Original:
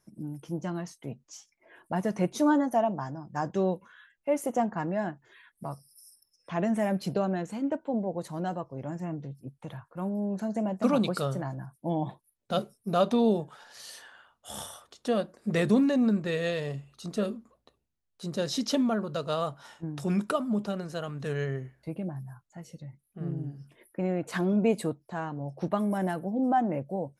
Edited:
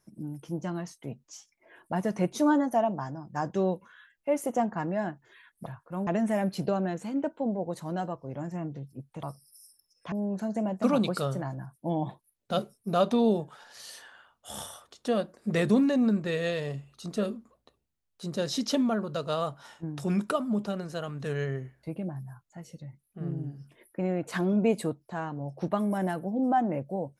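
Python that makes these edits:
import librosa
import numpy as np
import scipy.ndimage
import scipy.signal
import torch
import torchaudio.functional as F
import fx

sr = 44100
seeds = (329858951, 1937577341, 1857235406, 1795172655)

y = fx.edit(x, sr, fx.swap(start_s=5.66, length_s=0.89, other_s=9.71, other_length_s=0.41), tone=tone)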